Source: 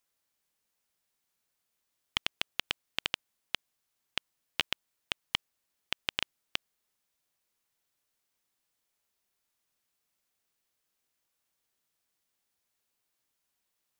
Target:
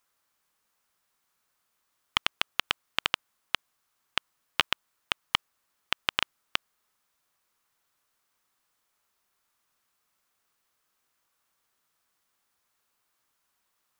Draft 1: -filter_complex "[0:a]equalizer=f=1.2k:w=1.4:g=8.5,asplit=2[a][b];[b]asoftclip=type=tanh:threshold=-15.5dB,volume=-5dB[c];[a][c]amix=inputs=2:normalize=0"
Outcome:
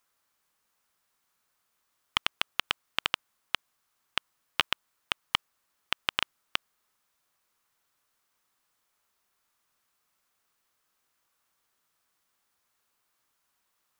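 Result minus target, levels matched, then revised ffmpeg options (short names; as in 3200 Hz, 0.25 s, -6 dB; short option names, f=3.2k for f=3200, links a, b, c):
soft clip: distortion +14 dB
-filter_complex "[0:a]equalizer=f=1.2k:w=1.4:g=8.5,asplit=2[a][b];[b]asoftclip=type=tanh:threshold=-5dB,volume=-5dB[c];[a][c]amix=inputs=2:normalize=0"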